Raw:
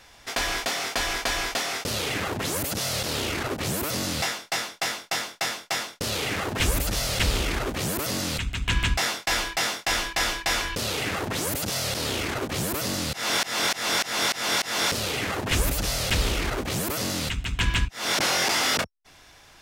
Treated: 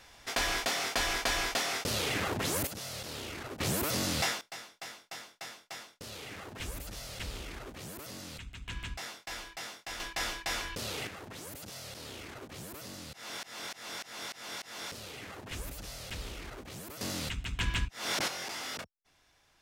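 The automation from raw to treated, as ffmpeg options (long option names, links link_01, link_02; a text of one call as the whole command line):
ffmpeg -i in.wav -af "asetnsamples=nb_out_samples=441:pad=0,asendcmd='2.67 volume volume -13dB;3.6 volume volume -3.5dB;4.41 volume volume -16.5dB;10 volume volume -9.5dB;11.07 volume volume -17dB;17.01 volume volume -8dB;18.28 volume volume -16dB',volume=-4dB" out.wav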